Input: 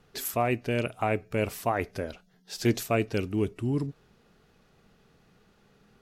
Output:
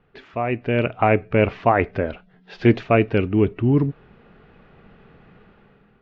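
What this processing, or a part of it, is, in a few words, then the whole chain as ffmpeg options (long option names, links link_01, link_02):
action camera in a waterproof case: -af "lowpass=frequency=2800:width=0.5412,lowpass=frequency=2800:width=1.3066,dynaudnorm=framelen=200:gausssize=7:maxgain=12.5dB" -ar 16000 -c:a aac -b:a 64k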